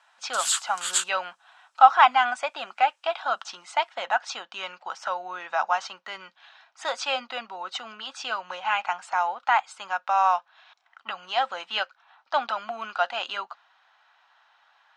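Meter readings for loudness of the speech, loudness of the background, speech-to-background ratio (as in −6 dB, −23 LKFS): −26.0 LKFS, −26.0 LKFS, 0.0 dB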